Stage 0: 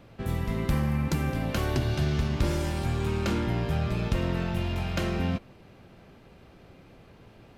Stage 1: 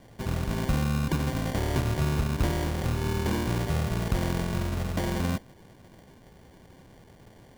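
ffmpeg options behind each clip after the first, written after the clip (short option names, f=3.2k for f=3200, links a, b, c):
-af "acrusher=samples=34:mix=1:aa=0.000001"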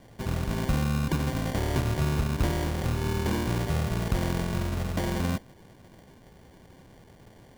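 -af anull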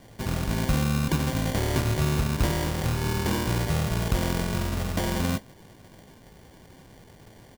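-filter_complex "[0:a]crystalizer=i=2.5:c=0,highshelf=f=6.6k:g=-10.5,asplit=2[a][b];[b]adelay=19,volume=-12dB[c];[a][c]amix=inputs=2:normalize=0,volume=1.5dB"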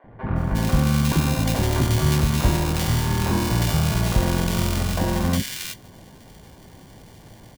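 -filter_complex "[0:a]acrossover=split=440|1800[a][b][c];[a]adelay=40[d];[c]adelay=360[e];[d][b][e]amix=inputs=3:normalize=0,volume=5.5dB"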